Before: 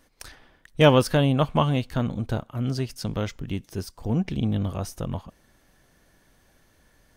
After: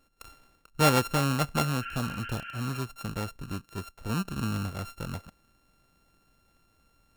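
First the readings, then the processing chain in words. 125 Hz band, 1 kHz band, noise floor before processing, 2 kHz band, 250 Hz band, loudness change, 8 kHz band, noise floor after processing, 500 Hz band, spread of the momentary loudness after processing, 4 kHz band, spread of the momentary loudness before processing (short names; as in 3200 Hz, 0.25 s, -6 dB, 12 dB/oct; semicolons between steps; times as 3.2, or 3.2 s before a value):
-6.0 dB, -2.0 dB, -62 dBFS, -1.0 dB, -6.5 dB, -5.5 dB, +3.0 dB, -68 dBFS, -9.0 dB, 15 LU, -3.5 dB, 15 LU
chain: sample sorter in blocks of 32 samples; spectral repair 1.84–2.79, 1300–3200 Hz; gain -6 dB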